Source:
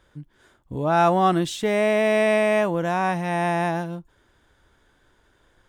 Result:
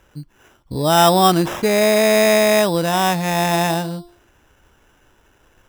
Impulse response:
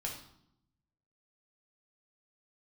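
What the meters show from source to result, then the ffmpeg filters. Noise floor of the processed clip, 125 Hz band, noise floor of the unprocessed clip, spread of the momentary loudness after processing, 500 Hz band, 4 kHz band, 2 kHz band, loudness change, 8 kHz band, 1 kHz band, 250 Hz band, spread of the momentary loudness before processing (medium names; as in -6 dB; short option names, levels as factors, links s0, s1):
-57 dBFS, +5.5 dB, -63 dBFS, 10 LU, +5.0 dB, +13.5 dB, +4.5 dB, +5.5 dB, +15.5 dB, +5.0 dB, +5.5 dB, 10 LU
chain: -af "bandreject=f=348.2:t=h:w=4,bandreject=f=696.4:t=h:w=4,bandreject=f=1044.6:t=h:w=4,bandreject=f=1392.8:t=h:w=4,acrusher=samples=10:mix=1:aa=0.000001,volume=1.88"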